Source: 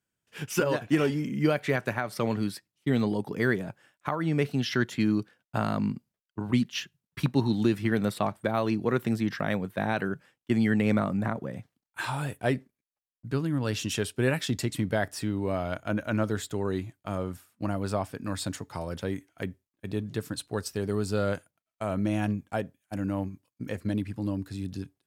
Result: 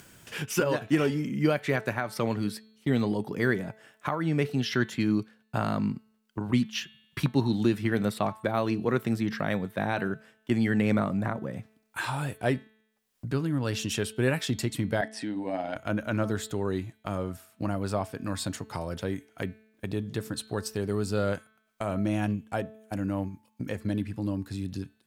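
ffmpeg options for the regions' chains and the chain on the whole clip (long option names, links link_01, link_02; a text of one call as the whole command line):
ffmpeg -i in.wav -filter_complex "[0:a]asettb=1/sr,asplit=3[link_01][link_02][link_03];[link_01]atrim=end=15.014[link_04];[link_02]atrim=start=15.01:end=15.76,asetpts=PTS-STARTPTS,afade=type=in:duration=0.004:curve=qsin,afade=type=out:start_time=0.746:duration=0.004:curve=qsin,tremolo=f=110:d=0.519,highpass=250,equalizer=frequency=280:width_type=q:width=4:gain=7,equalizer=frequency=400:width_type=q:width=4:gain=-9,equalizer=frequency=770:width_type=q:width=4:gain=7,equalizer=frequency=1200:width_type=q:width=4:gain=-9,equalizer=frequency=1800:width_type=q:width=4:gain=5,equalizer=frequency=7100:width_type=q:width=4:gain=-6,lowpass=frequency=9100:width=0.5412,lowpass=frequency=9100:width=1.3066[link_05];[link_03]atrim=start=15.756[link_06];[link_04][link_05]acrossfade=duration=0.004:curve1=hsin:curve2=qsin[link_07];[link_07][link_06]acrossfade=duration=0.004:curve1=qsin:curve2=hsin,bandreject=frequency=218.2:width_type=h:width=4,bandreject=frequency=436.4:width_type=h:width=4,bandreject=frequency=654.6:width_type=h:width=4,bandreject=frequency=872.8:width_type=h:width=4,bandreject=frequency=1091:width_type=h:width=4,bandreject=frequency=1309.2:width_type=h:width=4,bandreject=frequency=1527.4:width_type=h:width=4,bandreject=frequency=1745.6:width_type=h:width=4,bandreject=frequency=1963.8:width_type=h:width=4,bandreject=frequency=2182:width_type=h:width=4,bandreject=frequency=2400.2:width_type=h:width=4,bandreject=frequency=2618.4:width_type=h:width=4,bandreject=frequency=2836.6:width_type=h:width=4,bandreject=frequency=3054.8:width_type=h:width=4,bandreject=frequency=3273:width_type=h:width=4,bandreject=frequency=3491.2:width_type=h:width=4,bandreject=frequency=3709.4:width_type=h:width=4,bandreject=frequency=3927.6:width_type=h:width=4,bandreject=frequency=4145.8:width_type=h:width=4,bandreject=frequency=4364:width_type=h:width=4,acompressor=mode=upward:threshold=-29dB:ratio=2.5" out.wav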